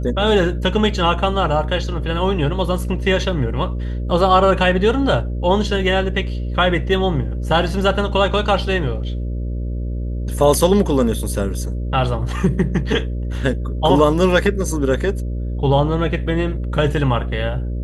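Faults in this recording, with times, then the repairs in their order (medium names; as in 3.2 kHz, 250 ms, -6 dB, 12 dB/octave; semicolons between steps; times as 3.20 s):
buzz 60 Hz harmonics 10 -23 dBFS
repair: de-hum 60 Hz, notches 10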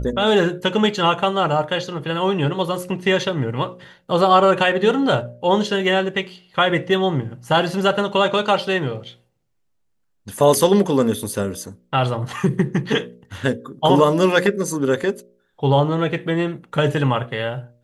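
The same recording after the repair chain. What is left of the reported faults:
nothing left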